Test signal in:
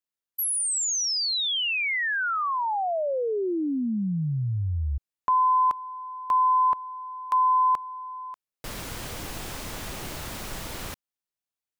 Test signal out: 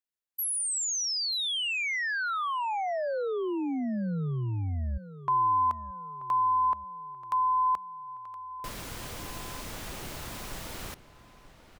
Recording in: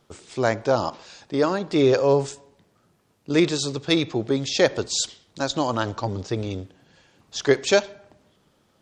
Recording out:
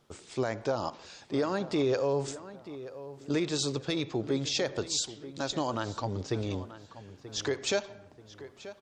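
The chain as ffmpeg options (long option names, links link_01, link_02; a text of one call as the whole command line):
ffmpeg -i in.wav -filter_complex "[0:a]alimiter=limit=-15.5dB:level=0:latency=1:release=163,asplit=2[link_01][link_02];[link_02]adelay=933,lowpass=frequency=3200:poles=1,volume=-14.5dB,asplit=2[link_03][link_04];[link_04]adelay=933,lowpass=frequency=3200:poles=1,volume=0.39,asplit=2[link_05][link_06];[link_06]adelay=933,lowpass=frequency=3200:poles=1,volume=0.39,asplit=2[link_07][link_08];[link_08]adelay=933,lowpass=frequency=3200:poles=1,volume=0.39[link_09];[link_01][link_03][link_05][link_07][link_09]amix=inputs=5:normalize=0,volume=-4dB" out.wav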